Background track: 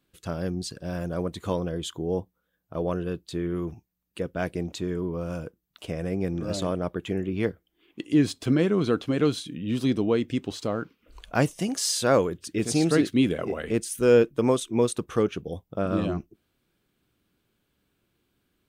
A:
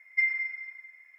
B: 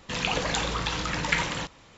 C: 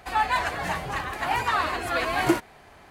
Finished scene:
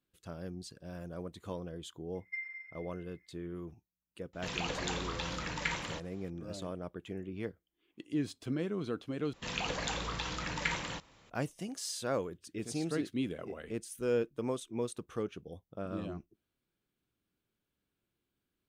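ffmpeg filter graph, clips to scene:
ffmpeg -i bed.wav -i cue0.wav -i cue1.wav -filter_complex "[2:a]asplit=2[link_01][link_02];[0:a]volume=-13dB,asplit=2[link_03][link_04];[link_03]atrim=end=9.334[link_05];[link_02]atrim=end=1.97,asetpts=PTS-STARTPTS,volume=-8.5dB[link_06];[link_04]atrim=start=11.296[link_07];[1:a]atrim=end=1.18,asetpts=PTS-STARTPTS,volume=-14.5dB,afade=type=in:duration=0.004:curve=hsin,afade=type=out:start_time=1.176:duration=0.004:curve=hsin,adelay=2150[link_08];[link_01]atrim=end=1.97,asetpts=PTS-STARTPTS,volume=-9.5dB,afade=type=in:duration=0.004:curve=hsin,afade=type=out:start_time=1.966:duration=0.004:curve=hsin,adelay=190953S[link_09];[link_05][link_06]acrossfade=duration=0.004:curve1=hsin:curve2=hsin[link_10];[link_10][link_07]acrossfade=duration=0.004:curve1=hsin:curve2=hsin[link_11];[link_11][link_08][link_09]amix=inputs=3:normalize=0" out.wav

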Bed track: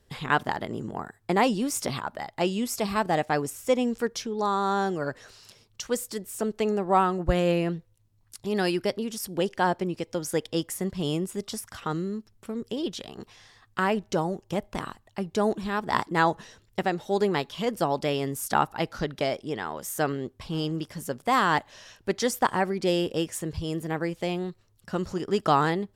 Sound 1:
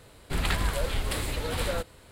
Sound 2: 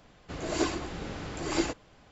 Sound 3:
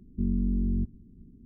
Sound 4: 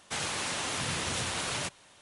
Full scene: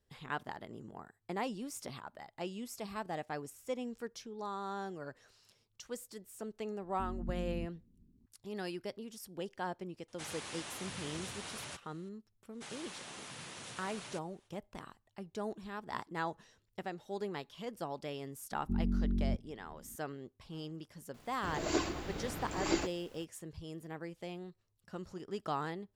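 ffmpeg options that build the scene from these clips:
ffmpeg -i bed.wav -i cue0.wav -i cue1.wav -i cue2.wav -i cue3.wav -filter_complex "[3:a]asplit=2[link_01][link_02];[4:a]asplit=2[link_03][link_04];[0:a]volume=-15dB[link_05];[link_04]highpass=frequency=110:width=0.5412,highpass=frequency=110:width=1.3066[link_06];[2:a]acrusher=bits=9:mix=0:aa=0.000001[link_07];[link_01]atrim=end=1.45,asetpts=PTS-STARTPTS,volume=-14dB,afade=type=in:duration=0.004:curve=hsin,afade=type=out:start_time=1.446:duration=0.004:curve=hsin,adelay=6810[link_08];[link_03]atrim=end=2.01,asetpts=PTS-STARTPTS,volume=-12dB,afade=type=in:duration=0.004:curve=hsin,afade=type=out:start_time=2.006:duration=0.004:curve=hsin,adelay=10080[link_09];[link_06]atrim=end=2.01,asetpts=PTS-STARTPTS,volume=-15dB,afade=type=in:duration=0.05,afade=type=out:start_time=1.96:duration=0.05,adelay=12500[link_10];[link_02]atrim=end=1.45,asetpts=PTS-STARTPTS,volume=-5.5dB,afade=type=in:duration=0.004:curve=hsin,afade=type=out:start_time=1.446:duration=0.004:curve=hsin,adelay=18510[link_11];[link_07]atrim=end=2.11,asetpts=PTS-STARTPTS,volume=-4dB,afade=type=in:duration=0.004:curve=hsin,afade=type=out:start_time=2.106:duration=0.004:curve=hsin,adelay=21140[link_12];[link_05][link_08][link_09][link_10][link_11][link_12]amix=inputs=6:normalize=0" out.wav

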